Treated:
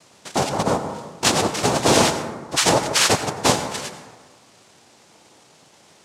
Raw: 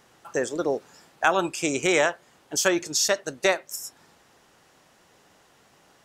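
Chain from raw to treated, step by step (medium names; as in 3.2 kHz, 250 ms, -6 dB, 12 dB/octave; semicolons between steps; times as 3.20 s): dynamic bell 990 Hz, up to -6 dB, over -36 dBFS, Q 1.3; noise-vocoded speech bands 2; plate-style reverb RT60 1.4 s, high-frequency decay 0.35×, pre-delay 75 ms, DRR 8.5 dB; trim +6 dB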